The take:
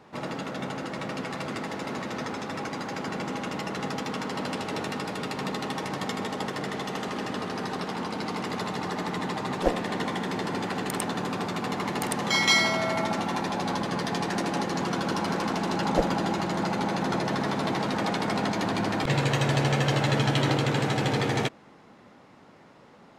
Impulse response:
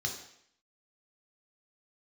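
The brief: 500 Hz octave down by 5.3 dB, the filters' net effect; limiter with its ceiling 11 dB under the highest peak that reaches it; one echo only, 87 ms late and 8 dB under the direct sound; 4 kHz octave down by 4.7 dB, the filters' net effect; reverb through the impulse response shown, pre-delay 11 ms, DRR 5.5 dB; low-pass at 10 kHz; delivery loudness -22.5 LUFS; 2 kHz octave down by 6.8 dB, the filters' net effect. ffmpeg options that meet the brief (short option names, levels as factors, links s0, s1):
-filter_complex "[0:a]lowpass=10000,equalizer=f=500:t=o:g=-6.5,equalizer=f=2000:t=o:g=-7,equalizer=f=4000:t=o:g=-3.5,alimiter=limit=0.0708:level=0:latency=1,aecho=1:1:87:0.398,asplit=2[s0][s1];[1:a]atrim=start_sample=2205,adelay=11[s2];[s1][s2]afir=irnorm=-1:irlink=0,volume=0.376[s3];[s0][s3]amix=inputs=2:normalize=0,volume=2.66"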